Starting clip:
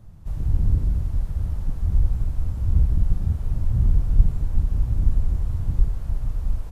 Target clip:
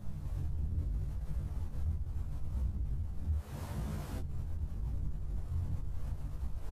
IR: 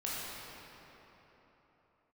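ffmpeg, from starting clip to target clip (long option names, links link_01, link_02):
-filter_complex "[0:a]asettb=1/sr,asplit=3[link_01][link_02][link_03];[link_01]atrim=end=3.384[link_04];[link_02]atrim=start=3.38:end=4.19,asetpts=PTS-STARTPTS,afade=type=in:duration=0.004:curve=qsin,afade=type=out:start_time=0.806:duration=0.004:curve=qsin,highpass=frequency=660:poles=1[link_05];[link_03]atrim=start=4.186[link_06];[link_04][link_05]acrossfade=duration=0.004:curve1=hsin:curve2=qsin[link_07];[link_07][link_06]acrossfade=duration=0.004:curve1=qsin:curve2=hsin,acompressor=threshold=-33dB:ratio=3,alimiter=level_in=10dB:limit=-24dB:level=0:latency=1:release=10,volume=-10dB,flanger=delay=19.5:depth=5.5:speed=0.77,asplit=2[link_08][link_09];[link_09]adelay=14,volume=-3.5dB[link_10];[link_08][link_10]amix=inputs=2:normalize=0,volume=5.5dB"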